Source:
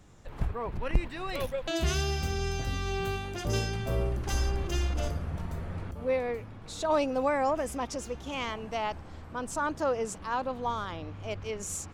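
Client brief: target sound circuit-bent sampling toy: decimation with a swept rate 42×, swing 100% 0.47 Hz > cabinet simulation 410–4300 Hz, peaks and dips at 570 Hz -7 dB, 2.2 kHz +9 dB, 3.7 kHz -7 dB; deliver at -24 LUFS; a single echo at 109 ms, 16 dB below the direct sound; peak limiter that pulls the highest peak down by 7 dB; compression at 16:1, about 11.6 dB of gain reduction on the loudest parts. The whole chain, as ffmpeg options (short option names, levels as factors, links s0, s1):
-af "acompressor=threshold=0.0355:ratio=16,alimiter=level_in=1.5:limit=0.0631:level=0:latency=1,volume=0.668,aecho=1:1:109:0.158,acrusher=samples=42:mix=1:aa=0.000001:lfo=1:lforange=42:lforate=0.47,highpass=410,equalizer=f=570:t=q:w=4:g=-7,equalizer=f=2200:t=q:w=4:g=9,equalizer=f=3700:t=q:w=4:g=-7,lowpass=f=4300:w=0.5412,lowpass=f=4300:w=1.3066,volume=7.5"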